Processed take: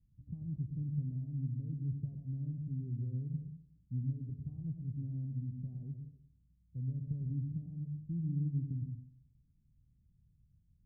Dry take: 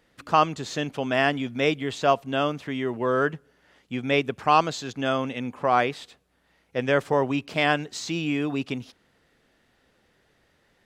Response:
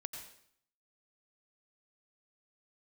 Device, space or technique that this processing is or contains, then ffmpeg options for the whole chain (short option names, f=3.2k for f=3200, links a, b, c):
club heard from the street: -filter_complex "[0:a]alimiter=limit=-17dB:level=0:latency=1:release=89,lowpass=f=140:w=0.5412,lowpass=f=140:w=1.3066[a];[1:a]atrim=start_sample=2205[b];[a][b]afir=irnorm=-1:irlink=0,volume=7.5dB"